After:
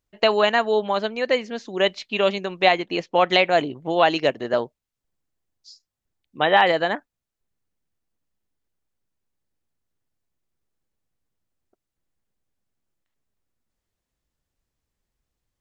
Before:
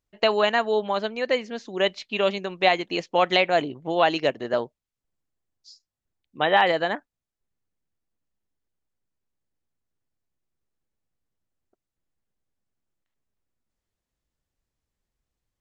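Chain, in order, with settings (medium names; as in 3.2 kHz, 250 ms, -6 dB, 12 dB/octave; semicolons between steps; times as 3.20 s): 2.72–3.30 s: treble shelf 5.8 kHz -10 dB; trim +2.5 dB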